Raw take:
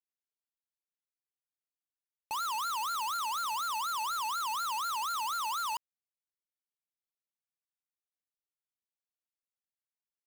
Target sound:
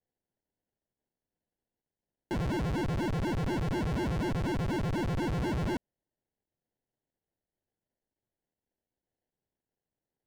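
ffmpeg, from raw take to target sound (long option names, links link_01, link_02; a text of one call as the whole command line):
ffmpeg -i in.wav -af "acrusher=samples=36:mix=1:aa=0.000001,aemphasis=mode=reproduction:type=50kf,volume=3.5dB" out.wav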